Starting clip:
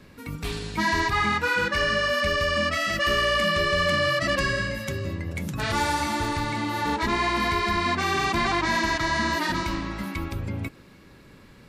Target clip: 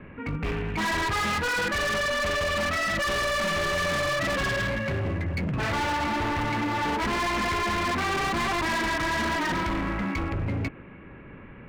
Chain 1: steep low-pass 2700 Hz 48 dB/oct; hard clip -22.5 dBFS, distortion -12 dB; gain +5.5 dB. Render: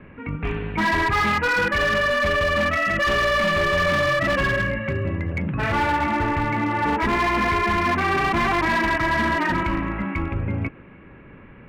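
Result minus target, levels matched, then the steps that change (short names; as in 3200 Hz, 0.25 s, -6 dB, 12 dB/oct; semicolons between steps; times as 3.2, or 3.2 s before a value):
hard clip: distortion -7 dB
change: hard clip -30.5 dBFS, distortion -6 dB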